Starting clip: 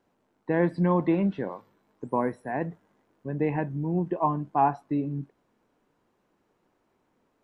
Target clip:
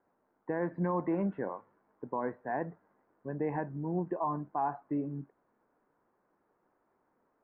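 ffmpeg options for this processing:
-af "lowpass=f=1.7k:w=0.5412,lowpass=f=1.7k:w=1.3066,lowshelf=f=330:g=-10,alimiter=limit=-23dB:level=0:latency=1:release=90"

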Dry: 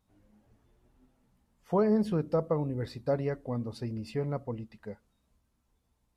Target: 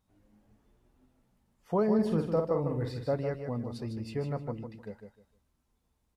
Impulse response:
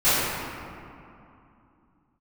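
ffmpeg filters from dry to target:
-filter_complex "[0:a]asettb=1/sr,asplit=3[a][b][c];[a]atrim=end=1.944[d];[b]atrim=start=1.94:end=3.05,asetpts=PTS-STARTPTS,afade=t=in:d=0.004:c=qsin,afade=t=out:st=1.106:d=0.004:c=qsin,asplit=2[e][f];[f]adelay=49,volume=-6dB[g];[e][g]amix=inputs=2:normalize=0,atrim=end_sample=48951[h];[c]atrim=start=3.046[i];[d][h]acrossfade=d=0.004:c1=hsin:c2=qsin[j];[j][i]acrossfade=d=0.004:c1=qsin:c2=hsin,aecho=1:1:153|306|459:0.447|0.103|0.0236,volume=-1.5dB"

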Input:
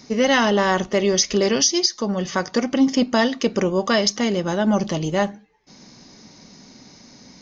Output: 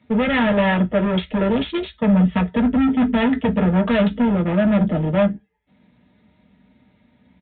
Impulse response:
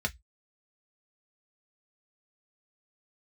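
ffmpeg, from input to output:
-filter_complex "[0:a]afwtdn=0.0562,asettb=1/sr,asplit=3[a][b][c];[a]atrim=end=1.774[d];[b]atrim=start=1.77:end=4.25,asetpts=PTS-STARTPTS,afade=t=in:d=0.004:c=qsin,afade=t=out:st=2.476:d=0.004:c=qsin,aecho=1:1:4.5:0.7,atrim=end_sample=109368[e];[c]atrim=start=4.246[f];[d][e]acrossfade=d=0.004:c1=hsin:c2=qsin[g];[g][f]acrossfade=d=0.004:c1=qsin:c2=hsin,volume=22.5dB,asoftclip=hard,volume=-22.5dB[h];[1:a]atrim=start_sample=2205,asetrate=41895,aresample=44100[i];[h][i]afir=irnorm=-1:irlink=0,aresample=8000,aresample=44100"

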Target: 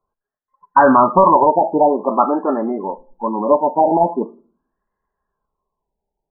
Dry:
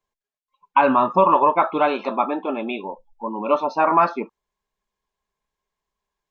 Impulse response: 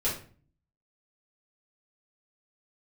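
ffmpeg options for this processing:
-filter_complex "[0:a]asplit=2[a][b];[1:a]atrim=start_sample=2205,adelay=46[c];[b][c]afir=irnorm=-1:irlink=0,volume=-30dB[d];[a][d]amix=inputs=2:normalize=0,apsyclip=10dB,afftfilt=real='re*lt(b*sr/1024,940*pow(2100/940,0.5+0.5*sin(2*PI*0.45*pts/sr)))':imag='im*lt(b*sr/1024,940*pow(2100/940,0.5+0.5*sin(2*PI*0.45*pts/sr)))':win_size=1024:overlap=0.75,volume=-3dB"

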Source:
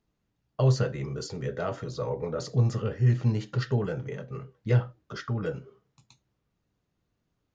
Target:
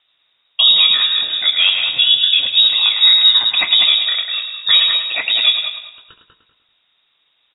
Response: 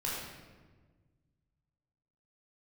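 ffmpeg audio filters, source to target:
-filter_complex "[0:a]highpass=f=310:p=1,asplit=2[a][b];[b]aecho=0:1:106|212|318|424|530:0.355|0.156|0.0687|0.0302|0.0133[c];[a][c]amix=inputs=2:normalize=0,lowpass=f=3.3k:t=q:w=0.5098,lowpass=f=3.3k:t=q:w=0.6013,lowpass=f=3.3k:t=q:w=0.9,lowpass=f=3.3k:t=q:w=2.563,afreqshift=-3900,asplit=2[d][e];[e]adelay=194,lowpass=f=1.7k:p=1,volume=-4dB,asplit=2[f][g];[g]adelay=194,lowpass=f=1.7k:p=1,volume=0.26,asplit=2[h][i];[i]adelay=194,lowpass=f=1.7k:p=1,volume=0.26,asplit=2[j][k];[k]adelay=194,lowpass=f=1.7k:p=1,volume=0.26[l];[f][h][j][l]amix=inputs=4:normalize=0[m];[d][m]amix=inputs=2:normalize=0,alimiter=level_in=20.5dB:limit=-1dB:release=50:level=0:latency=1,volume=-1dB"

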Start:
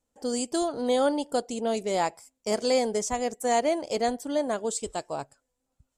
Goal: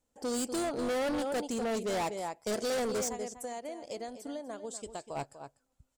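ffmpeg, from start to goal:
-filter_complex "[0:a]asplit=3[a][b][c];[a]afade=t=out:st=3.08:d=0.02[d];[b]acompressor=threshold=-37dB:ratio=16,afade=t=in:st=3.08:d=0.02,afade=t=out:st=5.15:d=0.02[e];[c]afade=t=in:st=5.15:d=0.02[f];[d][e][f]amix=inputs=3:normalize=0,asplit=2[g][h];[h]adelay=244.9,volume=-11dB,highshelf=f=4k:g=-5.51[i];[g][i]amix=inputs=2:normalize=0,asoftclip=type=hard:threshold=-29.5dB"

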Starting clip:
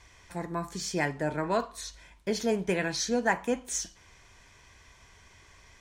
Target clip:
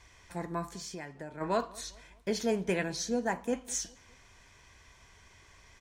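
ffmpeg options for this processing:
-filter_complex "[0:a]asplit=3[a][b][c];[a]afade=t=out:st=0.73:d=0.02[d];[b]acompressor=threshold=-38dB:ratio=6,afade=t=in:st=0.73:d=0.02,afade=t=out:st=1.4:d=0.02[e];[c]afade=t=in:st=1.4:d=0.02[f];[d][e][f]amix=inputs=3:normalize=0,asettb=1/sr,asplit=3[g][h][i];[g]atrim=end=2.834[j];[h]atrim=start=2.83:end=3.53,asetpts=PTS-STARTPTS,afade=t=in:d=0.004:c=qsin,afade=t=out:st=0.696:d=0.004:c=qsin,equalizer=f=2k:t=o:w=2.6:g=-7[k];[i]atrim=start=3.526[l];[j][k]acrossfade=d=0.004:c1=hsin:c2=qsin[m];[m][l]acrossfade=d=0.004:c1=qsin:c2=hsin,asplit=2[n][o];[o]adelay=202,lowpass=f=1.8k:p=1,volume=-22.5dB,asplit=2[p][q];[q]adelay=202,lowpass=f=1.8k:p=1,volume=0.46,asplit=2[r][s];[s]adelay=202,lowpass=f=1.8k:p=1,volume=0.46[t];[n][p][r][t]amix=inputs=4:normalize=0,volume=-2dB"

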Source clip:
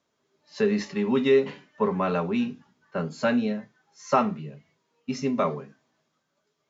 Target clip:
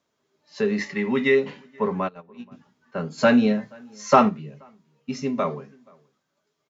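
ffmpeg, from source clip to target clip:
-filter_complex "[0:a]asettb=1/sr,asplit=3[a][b][c];[a]atrim=end=0.784[d];[b]atrim=start=0.78:end=1.35,asetpts=PTS-STARTPTS,afade=t=in:d=0.004:c=qsin,afade=t=out:st=0.566:d=0.004:c=qsin,equalizer=f=2k:w=4.4:g=13[e];[c]atrim=start=1.346[f];[d][e]acrossfade=d=0.004:c1=hsin:c2=qsin[g];[g][f]acrossfade=d=0.004:c1=qsin:c2=hsin,asplit=3[h][i][j];[h]afade=t=out:st=2.07:d=0.02[k];[i]agate=range=-26dB:threshold=-21dB:ratio=16:detection=peak,afade=t=in:st=2.07:d=0.02,afade=t=out:st=2.51:d=0.02[l];[j]afade=t=in:st=2.51:d=0.02[m];[k][l][m]amix=inputs=3:normalize=0,asplit=2[n][o];[o]adelay=478.1,volume=-28dB,highshelf=f=4k:g=-10.8[p];[n][p]amix=inputs=2:normalize=0,asplit=3[q][r][s];[q]afade=t=out:st=3.17:d=0.02[t];[r]acontrast=82,afade=t=in:st=3.17:d=0.02,afade=t=out:st=4.28:d=0.02[u];[s]afade=t=in:st=4.28:d=0.02[v];[t][u][v]amix=inputs=3:normalize=0"

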